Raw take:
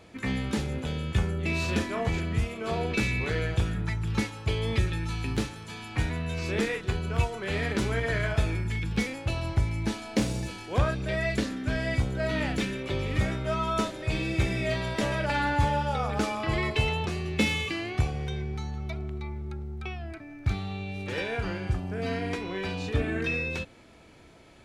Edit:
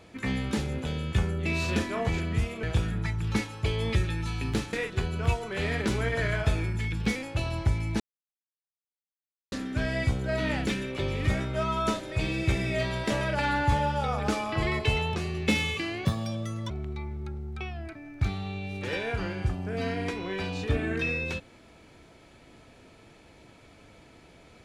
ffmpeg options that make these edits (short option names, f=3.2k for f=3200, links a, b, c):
-filter_complex "[0:a]asplit=7[a][b][c][d][e][f][g];[a]atrim=end=2.632[h];[b]atrim=start=3.458:end=5.562[i];[c]atrim=start=6.638:end=9.91,asetpts=PTS-STARTPTS,afade=t=out:st=3.268:d=0.004:c=hsin[j];[d]atrim=start=9.91:end=11.43,asetpts=PTS-STARTPTS,volume=0[k];[e]atrim=start=11.43:end=17.964,asetpts=PTS-STARTPTS,afade=t=in:d=0.004:c=hsin[l];[f]atrim=start=17.96:end=18.95,asetpts=PTS-STARTPTS,asetrate=67032,aresample=44100,atrim=end_sample=28723,asetpts=PTS-STARTPTS[m];[g]atrim=start=18.946[n];[h][i]acrossfade=d=0.004:c1=hsin:c2=hsin[o];[j][k][l]concat=n=3:v=0:a=1[p];[o][p]acrossfade=d=0.004:c1=hsin:c2=hsin[q];[q][m]acrossfade=d=0.004:c1=hsin:c2=hsin[r];[r][n]acrossfade=d=0.004:c1=hsin:c2=hsin"